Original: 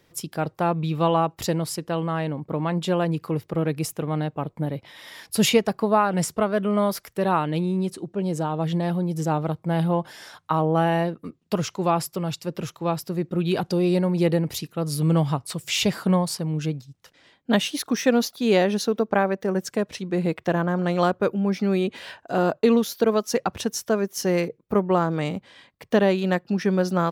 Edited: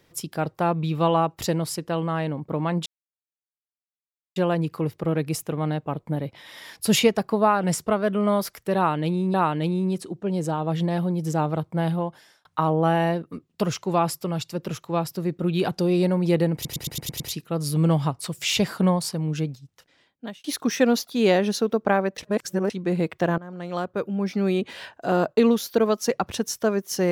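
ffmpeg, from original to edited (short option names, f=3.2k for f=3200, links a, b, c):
-filter_complex "[0:a]asplit=14[a][b][c][d][e][f][g][h][i][j][k][l][m][n];[a]atrim=end=2.86,asetpts=PTS-STARTPTS,afade=t=out:st=2.856:d=0.004:c=hsin,apad=pad_dur=1.5[o];[b]atrim=start=2.86:end=7.842,asetpts=PTS-STARTPTS,afade=t=in:d=0.004:c=hsin[p];[c]atrim=start=7.258:end=10.37,asetpts=PTS-STARTPTS,afade=t=out:st=2.422:d=0.69[q];[d]atrim=start=10.37:end=14.572,asetpts=PTS-STARTPTS,afade=t=in:d=0.004:c=hsin[r];[e]atrim=start=14.458:end=14.572[s];[f]atrim=start=14.458:end=14.572[t];[g]atrim=start=14.458:end=14.572[u];[h]atrim=start=14.458:end=14.572[v];[i]atrim=start=14.458:end=14.572[w];[j]atrim=start=14.458:end=17.7,asetpts=PTS-STARTPTS,afade=t=out:st=2.312:d=0.93[x];[k]atrim=start=17.7:end=19.442,asetpts=PTS-STARTPTS,afade=t=in:d=0.004:c=hsin[y];[l]atrim=start=19.438:end=19.962,asetpts=PTS-STARTPTS,areverse[z];[m]atrim=start=19.958:end=20.64,asetpts=PTS-STARTPTS,afade=t=out:st=0.678:d=0.004:c=hsin:silence=0.112202[aa];[n]atrim=start=20.64,asetpts=PTS-STARTPTS,afade=t=in:d=1.19:silence=0.112202[ab];[o][p]concat=n=2:v=0:a=1[ac];[q][r]concat=n=2:v=0:a=1[ad];[ac][ad]acrossfade=d=0.004:c1=hsin:c2=hsin[ae];[ae][s]acrossfade=d=0.004:c1=hsin:c2=hsin[af];[af][t]acrossfade=d=0.004:c1=hsin:c2=hsin[ag];[ag][u]acrossfade=d=0.004:c1=hsin:c2=hsin[ah];[ah][v]acrossfade=d=0.004:c1=hsin:c2=hsin[ai];[ai][w]acrossfade=d=0.004:c1=hsin:c2=hsin[aj];[x][y]concat=n=2:v=0:a=1[ak];[aj][ak]acrossfade=d=0.004:c1=hsin:c2=hsin[al];[al][z]acrossfade=d=0.004:c1=hsin:c2=hsin[am];[aa][ab]concat=n=2:v=0:a=1[an];[am][an]acrossfade=d=0.004:c1=hsin:c2=hsin"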